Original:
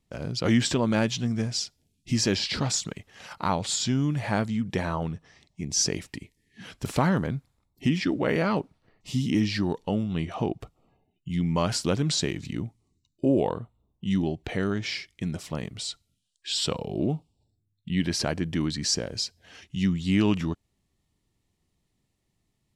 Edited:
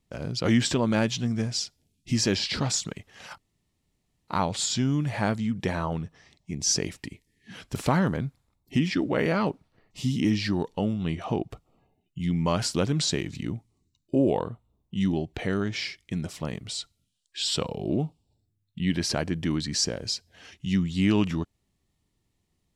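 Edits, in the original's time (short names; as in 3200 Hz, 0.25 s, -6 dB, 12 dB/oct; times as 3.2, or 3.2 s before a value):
3.38 insert room tone 0.90 s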